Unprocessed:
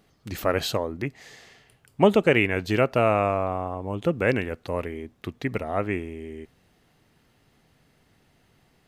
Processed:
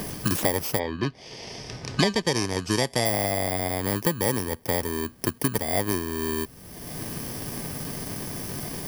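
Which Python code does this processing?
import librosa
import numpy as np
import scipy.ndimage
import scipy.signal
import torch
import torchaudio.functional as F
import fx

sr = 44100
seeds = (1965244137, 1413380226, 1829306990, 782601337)

y = fx.bit_reversed(x, sr, seeds[0], block=32)
y = fx.lowpass(y, sr, hz=fx.line((0.78, 4000.0), (3.05, 8900.0)), slope=24, at=(0.78, 3.05), fade=0.02)
y = fx.band_squash(y, sr, depth_pct=100)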